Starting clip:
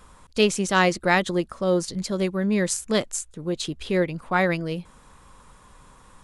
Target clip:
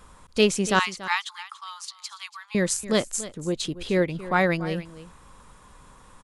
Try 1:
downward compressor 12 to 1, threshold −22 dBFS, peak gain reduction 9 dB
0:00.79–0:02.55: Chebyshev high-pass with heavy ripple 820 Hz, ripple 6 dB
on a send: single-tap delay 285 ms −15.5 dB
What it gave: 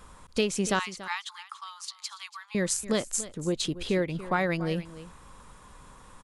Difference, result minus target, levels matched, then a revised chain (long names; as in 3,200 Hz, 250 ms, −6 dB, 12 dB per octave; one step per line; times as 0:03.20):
downward compressor: peak gain reduction +9 dB
0:00.79–0:02.55: Chebyshev high-pass with heavy ripple 820 Hz, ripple 6 dB
on a send: single-tap delay 285 ms −15.5 dB